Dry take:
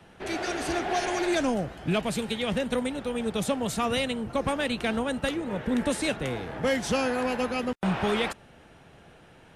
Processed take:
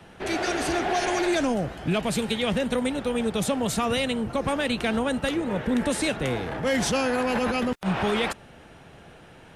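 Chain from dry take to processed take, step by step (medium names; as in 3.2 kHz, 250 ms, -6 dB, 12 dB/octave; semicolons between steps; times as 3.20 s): 6.46–7.91 s: transient shaper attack -7 dB, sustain +11 dB; peak limiter -21 dBFS, peak gain reduction 7.5 dB; trim +4.5 dB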